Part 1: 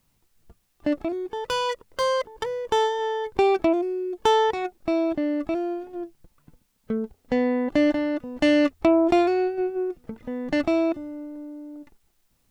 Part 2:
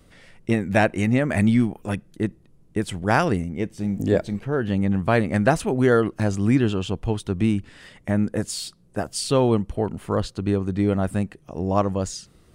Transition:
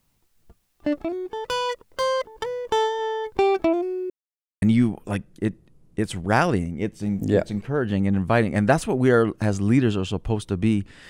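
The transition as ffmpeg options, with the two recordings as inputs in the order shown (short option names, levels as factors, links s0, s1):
-filter_complex "[0:a]apad=whole_dur=11.09,atrim=end=11.09,asplit=2[s0][s1];[s0]atrim=end=4.1,asetpts=PTS-STARTPTS,afade=t=out:st=4.096:d=0.004:c=hsin[s2];[s1]atrim=start=4.1:end=4.62,asetpts=PTS-STARTPTS,volume=0[s3];[1:a]atrim=start=1.4:end=7.87,asetpts=PTS-STARTPTS,afade=t=in:d=0.004:c=hsin[s4];[s2][s3][s4]concat=n=3:v=0:a=1"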